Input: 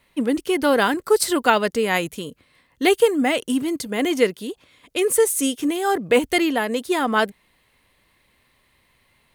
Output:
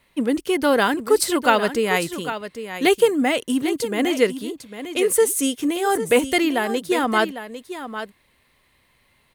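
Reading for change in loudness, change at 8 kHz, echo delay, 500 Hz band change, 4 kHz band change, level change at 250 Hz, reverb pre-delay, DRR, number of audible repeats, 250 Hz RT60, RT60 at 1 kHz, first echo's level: 0.0 dB, +0.5 dB, 801 ms, +0.5 dB, +0.5 dB, +0.5 dB, no reverb audible, no reverb audible, 1, no reverb audible, no reverb audible, −11.0 dB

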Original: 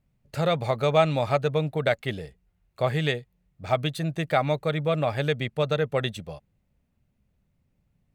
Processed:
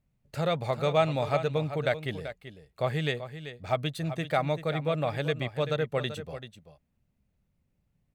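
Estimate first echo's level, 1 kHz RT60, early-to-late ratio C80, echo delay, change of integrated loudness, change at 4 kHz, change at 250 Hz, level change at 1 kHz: −11.5 dB, no reverb audible, no reverb audible, 386 ms, −4.0 dB, −3.5 dB, −3.5 dB, −3.5 dB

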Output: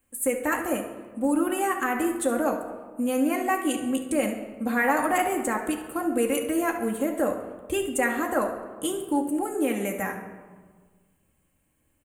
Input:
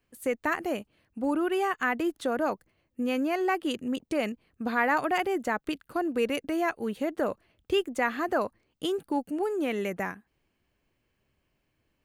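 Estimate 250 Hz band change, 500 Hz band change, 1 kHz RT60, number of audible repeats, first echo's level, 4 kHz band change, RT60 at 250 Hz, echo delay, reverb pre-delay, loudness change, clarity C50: +4.5 dB, +2.0 dB, 1.4 s, 1, −13.0 dB, −1.0 dB, 1.9 s, 69 ms, 4 ms, +3.0 dB, 6.5 dB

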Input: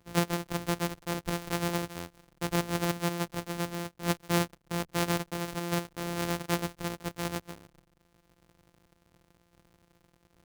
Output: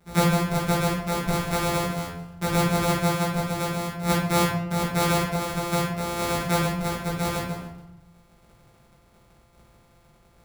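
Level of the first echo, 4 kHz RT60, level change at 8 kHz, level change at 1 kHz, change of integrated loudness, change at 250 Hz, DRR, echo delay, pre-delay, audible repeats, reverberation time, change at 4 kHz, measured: no echo audible, 0.50 s, +6.5 dB, +9.5 dB, +7.5 dB, +7.0 dB, −8.5 dB, no echo audible, 5 ms, no echo audible, 0.75 s, +6.0 dB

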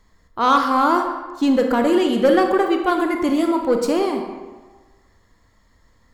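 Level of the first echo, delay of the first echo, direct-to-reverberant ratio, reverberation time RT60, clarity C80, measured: no echo audible, no echo audible, 4.0 dB, 1.4 s, 7.0 dB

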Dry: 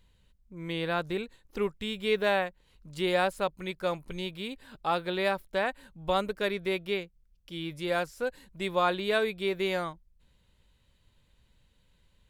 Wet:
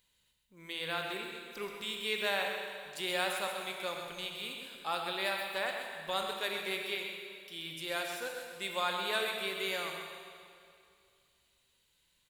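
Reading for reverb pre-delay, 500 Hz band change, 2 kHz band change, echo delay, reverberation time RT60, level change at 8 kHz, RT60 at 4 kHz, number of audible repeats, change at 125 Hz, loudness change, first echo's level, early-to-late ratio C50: 23 ms, −9.0 dB, −2.0 dB, 129 ms, 2.3 s, +5.5 dB, 2.1 s, 1, −14.0 dB, −5.0 dB, −8.5 dB, 2.0 dB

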